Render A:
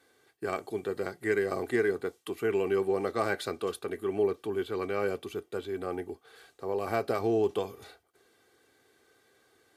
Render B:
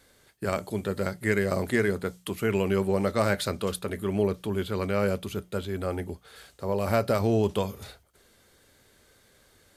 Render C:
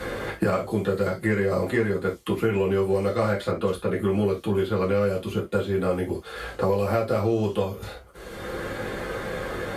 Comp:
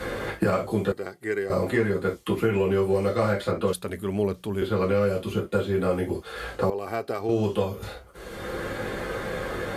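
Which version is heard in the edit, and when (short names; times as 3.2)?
C
0.92–1.5 from A
3.73–4.62 from B
6.7–7.29 from A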